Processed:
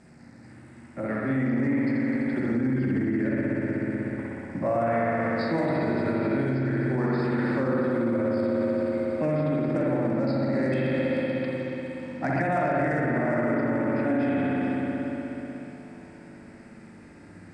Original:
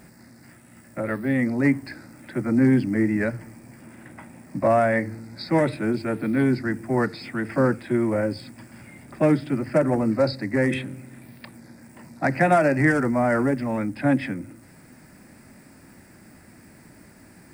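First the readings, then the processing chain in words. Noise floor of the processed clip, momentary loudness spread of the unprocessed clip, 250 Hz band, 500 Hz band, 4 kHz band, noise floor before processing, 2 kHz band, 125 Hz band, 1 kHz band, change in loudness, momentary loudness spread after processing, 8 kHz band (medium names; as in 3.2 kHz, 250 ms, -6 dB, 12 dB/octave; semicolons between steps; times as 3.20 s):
-48 dBFS, 14 LU, -1.5 dB, -2.0 dB, -6.0 dB, -51 dBFS, -4.0 dB, -2.0 dB, -3.5 dB, -3.5 dB, 9 LU, under -10 dB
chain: backward echo that repeats 216 ms, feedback 69%, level -12.5 dB; bass shelf 380 Hz +7 dB; flutter echo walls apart 6.7 m, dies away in 0.21 s; spring tank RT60 3.7 s, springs 60 ms, chirp 25 ms, DRR -6 dB; peak limiter -9 dBFS, peak gain reduction 12 dB; low-pass 8.2 kHz 24 dB/octave; bass shelf 140 Hz -8 dB; trim -7 dB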